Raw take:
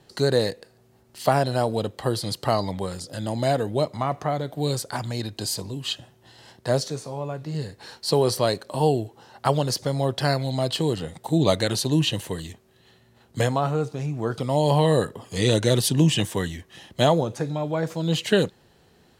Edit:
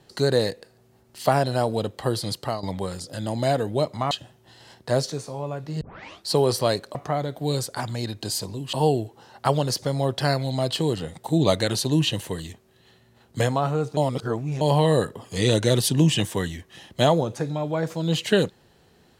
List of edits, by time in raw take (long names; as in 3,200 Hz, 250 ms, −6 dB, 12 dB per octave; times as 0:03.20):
0:02.32–0:02.63: fade out, to −12.5 dB
0:04.11–0:05.89: move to 0:08.73
0:07.59: tape start 0.46 s
0:13.97–0:14.61: reverse